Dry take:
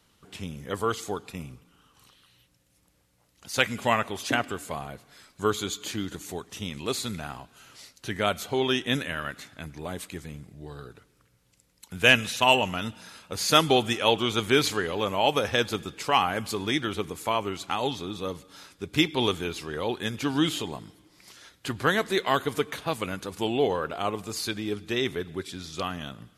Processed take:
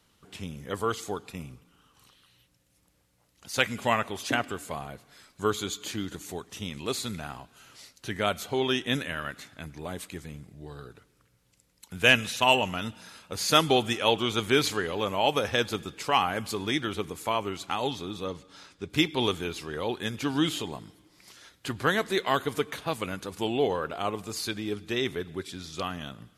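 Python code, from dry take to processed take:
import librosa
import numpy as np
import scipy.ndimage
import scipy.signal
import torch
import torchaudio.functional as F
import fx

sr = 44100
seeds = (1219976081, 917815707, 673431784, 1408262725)

y = fx.lowpass(x, sr, hz=7400.0, slope=12, at=(18.24, 18.9))
y = y * 10.0 ** (-1.5 / 20.0)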